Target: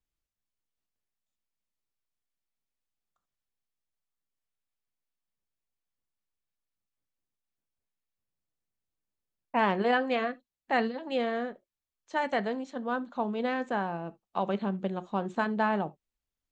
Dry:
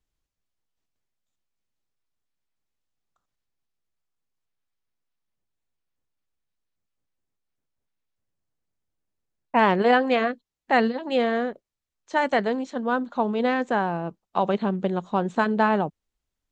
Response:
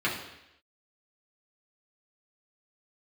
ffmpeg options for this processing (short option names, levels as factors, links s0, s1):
-filter_complex "[0:a]asplit=2[s0][s1];[1:a]atrim=start_sample=2205,atrim=end_sample=3528[s2];[s1][s2]afir=irnorm=-1:irlink=0,volume=0.0794[s3];[s0][s3]amix=inputs=2:normalize=0,volume=0.422"